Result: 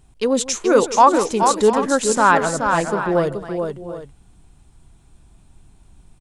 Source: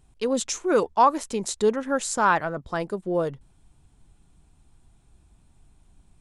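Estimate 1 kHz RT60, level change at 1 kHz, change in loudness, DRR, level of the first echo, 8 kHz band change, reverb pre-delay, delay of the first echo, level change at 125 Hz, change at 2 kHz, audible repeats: none, +7.5 dB, +7.0 dB, none, -17.0 dB, +7.5 dB, none, 0.157 s, +7.5 dB, +7.5 dB, 4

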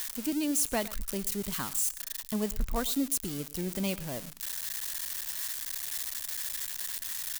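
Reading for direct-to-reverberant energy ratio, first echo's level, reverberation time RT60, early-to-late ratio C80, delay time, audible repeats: none, -19.0 dB, none, none, 0.11 s, 1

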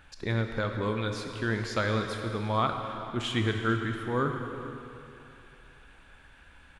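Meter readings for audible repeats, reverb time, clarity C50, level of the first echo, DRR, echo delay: 1, 2.8 s, 5.0 dB, -19.0 dB, 4.0 dB, 0.445 s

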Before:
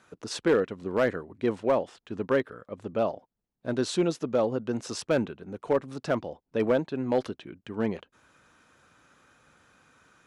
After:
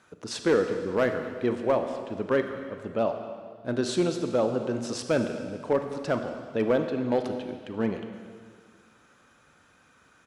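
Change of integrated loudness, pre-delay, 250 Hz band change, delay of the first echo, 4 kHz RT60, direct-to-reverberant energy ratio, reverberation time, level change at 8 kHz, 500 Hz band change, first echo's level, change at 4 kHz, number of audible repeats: +0.5 dB, 29 ms, +1.0 dB, 0.234 s, 1.8 s, 6.5 dB, 1.9 s, +1.0 dB, +1.0 dB, -19.0 dB, +1.0 dB, 1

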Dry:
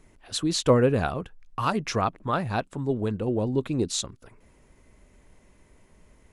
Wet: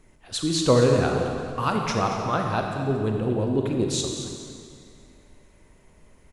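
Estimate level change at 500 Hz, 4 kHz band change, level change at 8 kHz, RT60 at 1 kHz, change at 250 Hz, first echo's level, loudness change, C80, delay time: +2.5 dB, +2.5 dB, +2.0 dB, 2.3 s, +2.0 dB, -11.5 dB, +2.0 dB, 3.5 dB, 0.229 s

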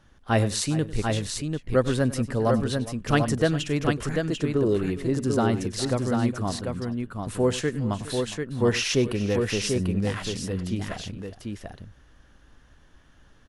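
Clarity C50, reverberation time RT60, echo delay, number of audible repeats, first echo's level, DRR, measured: none, none, 98 ms, 3, -17.0 dB, none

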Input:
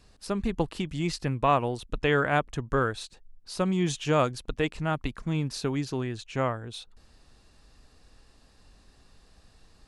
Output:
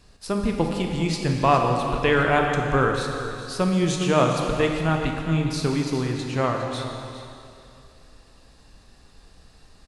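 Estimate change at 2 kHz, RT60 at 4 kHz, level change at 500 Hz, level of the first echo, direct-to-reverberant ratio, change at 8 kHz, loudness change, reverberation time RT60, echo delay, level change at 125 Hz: +5.5 dB, 2.5 s, +6.0 dB, -13.5 dB, 1.5 dB, +5.5 dB, +5.5 dB, 2.7 s, 0.409 s, +6.0 dB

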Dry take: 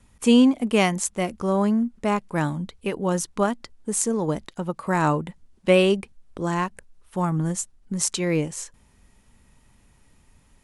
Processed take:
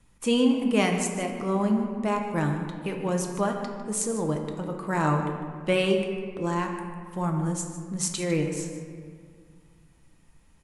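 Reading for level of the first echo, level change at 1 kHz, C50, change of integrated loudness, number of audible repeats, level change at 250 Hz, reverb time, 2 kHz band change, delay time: -14.0 dB, -3.0 dB, 5.0 dB, -3.5 dB, 1, -4.0 dB, 2.0 s, -3.0 dB, 0.152 s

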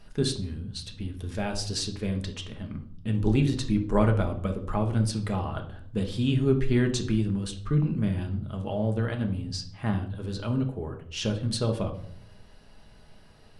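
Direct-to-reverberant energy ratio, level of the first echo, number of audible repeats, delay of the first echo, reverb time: 3.0 dB, none, none, none, 0.60 s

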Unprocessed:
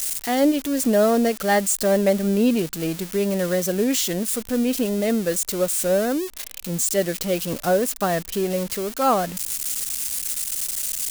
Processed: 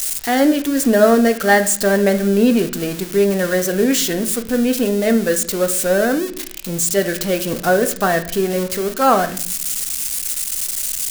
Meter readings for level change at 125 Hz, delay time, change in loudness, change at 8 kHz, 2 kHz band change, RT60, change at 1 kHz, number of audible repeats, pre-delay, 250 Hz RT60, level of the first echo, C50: +3.5 dB, none, +5.0 dB, +4.0 dB, +9.5 dB, 0.55 s, +5.5 dB, none, 3 ms, 1.2 s, none, 13.5 dB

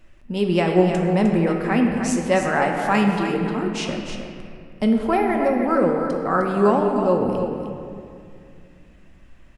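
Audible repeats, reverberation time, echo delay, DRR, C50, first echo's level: 1, 2.3 s, 0.306 s, 0.5 dB, 2.0 dB, -8.0 dB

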